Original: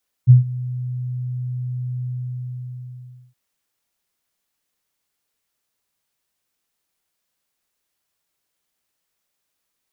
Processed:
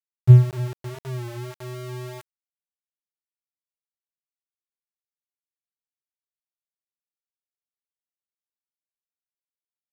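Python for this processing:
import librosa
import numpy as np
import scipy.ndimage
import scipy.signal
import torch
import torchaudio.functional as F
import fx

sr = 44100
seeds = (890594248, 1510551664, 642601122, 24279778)

y = fx.highpass(x, sr, hz=43.0, slope=6)
y = fx.peak_eq(y, sr, hz=92.0, db=9.5, octaves=1.7)
y = fx.rev_schroeder(y, sr, rt60_s=3.0, comb_ms=33, drr_db=8.0)
y = np.where(np.abs(y) >= 10.0 ** (-17.0 / 20.0), y, 0.0)
y = fx.power_curve(y, sr, exponent=1.4)
y = fx.record_warp(y, sr, rpm=33.33, depth_cents=100.0)
y = F.gain(torch.from_numpy(y), -5.0).numpy()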